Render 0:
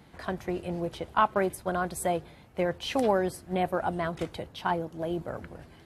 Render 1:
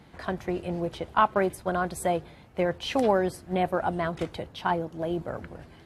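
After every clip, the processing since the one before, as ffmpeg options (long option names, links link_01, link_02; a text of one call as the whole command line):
ffmpeg -i in.wav -af "highshelf=frequency=9500:gain=-7.5,volume=2dB" out.wav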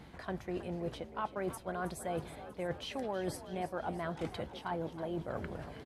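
ffmpeg -i in.wav -filter_complex "[0:a]areverse,acompressor=threshold=-35dB:ratio=6,areverse,aeval=exprs='val(0)+0.000891*(sin(2*PI*60*n/s)+sin(2*PI*2*60*n/s)/2+sin(2*PI*3*60*n/s)/3+sin(2*PI*4*60*n/s)/4+sin(2*PI*5*60*n/s)/5)':channel_layout=same,asplit=8[link_01][link_02][link_03][link_04][link_05][link_06][link_07][link_08];[link_02]adelay=320,afreqshift=48,volume=-13.5dB[link_09];[link_03]adelay=640,afreqshift=96,volume=-17.7dB[link_10];[link_04]adelay=960,afreqshift=144,volume=-21.8dB[link_11];[link_05]adelay=1280,afreqshift=192,volume=-26dB[link_12];[link_06]adelay=1600,afreqshift=240,volume=-30.1dB[link_13];[link_07]adelay=1920,afreqshift=288,volume=-34.3dB[link_14];[link_08]adelay=2240,afreqshift=336,volume=-38.4dB[link_15];[link_01][link_09][link_10][link_11][link_12][link_13][link_14][link_15]amix=inputs=8:normalize=0" out.wav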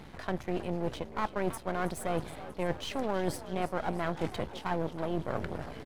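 ffmpeg -i in.wav -af "aeval=exprs='if(lt(val(0),0),0.251*val(0),val(0))':channel_layout=same,volume=7.5dB" out.wav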